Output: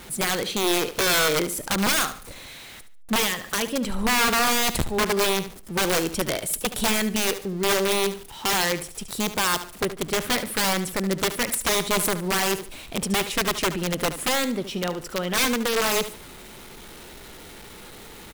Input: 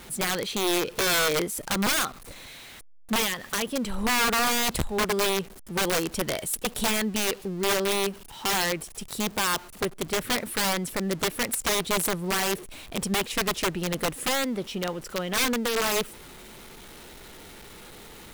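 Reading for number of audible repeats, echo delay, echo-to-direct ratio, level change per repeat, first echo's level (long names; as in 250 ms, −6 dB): 3, 73 ms, −12.0 dB, −11.0 dB, −12.5 dB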